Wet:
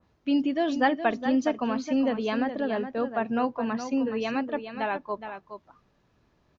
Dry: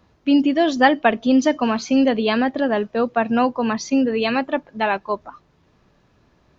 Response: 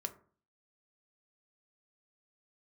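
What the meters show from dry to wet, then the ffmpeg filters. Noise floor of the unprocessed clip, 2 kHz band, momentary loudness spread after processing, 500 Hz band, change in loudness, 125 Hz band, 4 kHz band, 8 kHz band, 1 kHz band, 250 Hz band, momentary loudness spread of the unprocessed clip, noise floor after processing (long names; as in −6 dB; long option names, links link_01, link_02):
−60 dBFS, −9.0 dB, 10 LU, −8.0 dB, −8.0 dB, −8.0 dB, −11.0 dB, can't be measured, −8.0 dB, −8.0 dB, 7 LU, −68 dBFS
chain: -filter_complex "[0:a]asplit=2[link_01][link_02];[link_02]aecho=0:1:417:0.335[link_03];[link_01][link_03]amix=inputs=2:normalize=0,adynamicequalizer=threshold=0.0158:dfrequency=2400:dqfactor=0.7:tfrequency=2400:tqfactor=0.7:attack=5:release=100:ratio=0.375:range=2.5:mode=cutabove:tftype=highshelf,volume=-8.5dB"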